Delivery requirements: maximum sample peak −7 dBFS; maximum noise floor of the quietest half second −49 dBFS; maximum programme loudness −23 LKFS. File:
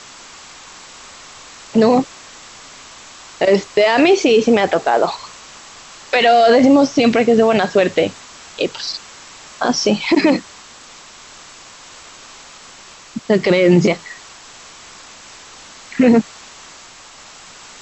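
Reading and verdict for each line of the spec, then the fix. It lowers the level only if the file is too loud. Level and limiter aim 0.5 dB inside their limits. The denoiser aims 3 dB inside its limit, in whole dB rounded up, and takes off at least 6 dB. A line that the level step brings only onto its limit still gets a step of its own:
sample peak −3.5 dBFS: out of spec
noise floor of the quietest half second −41 dBFS: out of spec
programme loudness −14.5 LKFS: out of spec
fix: level −9 dB

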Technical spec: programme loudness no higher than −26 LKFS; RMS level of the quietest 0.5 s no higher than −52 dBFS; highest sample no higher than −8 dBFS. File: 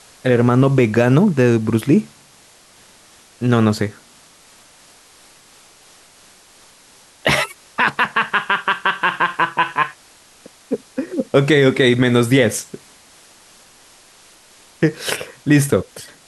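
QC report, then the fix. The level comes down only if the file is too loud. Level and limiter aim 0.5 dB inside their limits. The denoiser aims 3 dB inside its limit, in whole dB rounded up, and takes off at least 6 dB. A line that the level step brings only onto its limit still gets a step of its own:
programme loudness −17.0 LKFS: out of spec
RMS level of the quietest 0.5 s −49 dBFS: out of spec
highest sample −2.5 dBFS: out of spec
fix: level −9.5 dB

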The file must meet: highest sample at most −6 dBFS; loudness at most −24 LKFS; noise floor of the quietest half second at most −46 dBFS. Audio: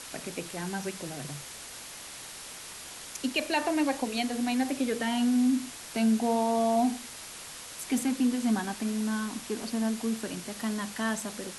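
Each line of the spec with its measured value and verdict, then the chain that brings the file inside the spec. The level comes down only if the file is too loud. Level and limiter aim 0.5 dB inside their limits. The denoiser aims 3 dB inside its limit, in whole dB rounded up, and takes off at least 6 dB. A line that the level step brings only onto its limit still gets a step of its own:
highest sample −15.5 dBFS: in spec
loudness −30.0 LKFS: in spec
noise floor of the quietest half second −44 dBFS: out of spec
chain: broadband denoise 6 dB, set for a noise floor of −44 dBFS

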